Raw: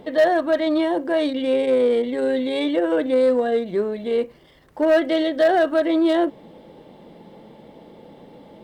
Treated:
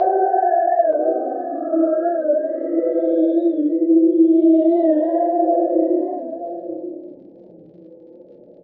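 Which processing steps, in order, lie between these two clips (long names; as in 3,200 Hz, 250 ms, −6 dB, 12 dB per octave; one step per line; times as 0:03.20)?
spectral envelope exaggerated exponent 3
extreme stretch with random phases 7.8×, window 0.10 s, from 0:05.51
surface crackle 48 per second −49 dBFS
Chebyshev low-pass filter 4,300 Hz, order 3
slap from a distant wall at 160 metres, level −10 dB
on a send at −2.5 dB: convolution reverb RT60 0.85 s, pre-delay 3 ms
on the sum: dynamic equaliser 1,100 Hz, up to +5 dB, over −33 dBFS, Q 1.1
wow of a warped record 45 rpm, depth 100 cents
level −3 dB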